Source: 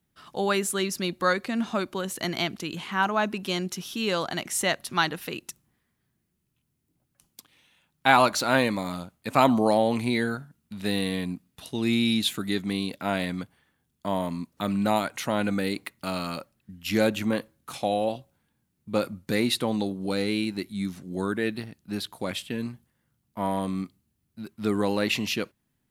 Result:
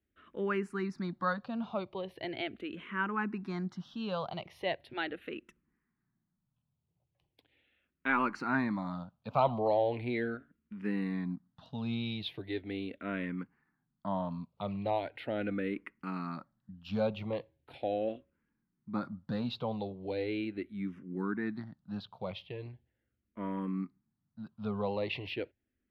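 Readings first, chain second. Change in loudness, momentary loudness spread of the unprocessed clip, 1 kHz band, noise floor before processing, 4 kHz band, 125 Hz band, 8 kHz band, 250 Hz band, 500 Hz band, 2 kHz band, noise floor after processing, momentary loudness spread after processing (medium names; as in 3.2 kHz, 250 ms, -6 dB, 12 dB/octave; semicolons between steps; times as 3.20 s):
-9.0 dB, 13 LU, -9.5 dB, -76 dBFS, -15.0 dB, -6.5 dB, under -30 dB, -8.5 dB, -7.5 dB, -9.5 dB, -84 dBFS, 13 LU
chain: in parallel at -3.5 dB: saturation -12.5 dBFS, distortion -17 dB; on the sum: distance through air 370 m; barber-pole phaser -0.39 Hz; trim -8 dB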